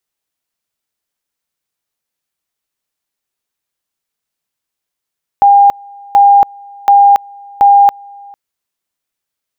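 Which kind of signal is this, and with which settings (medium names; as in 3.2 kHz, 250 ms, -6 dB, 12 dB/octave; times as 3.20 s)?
two-level tone 805 Hz -2.5 dBFS, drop 28 dB, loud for 0.28 s, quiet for 0.45 s, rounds 4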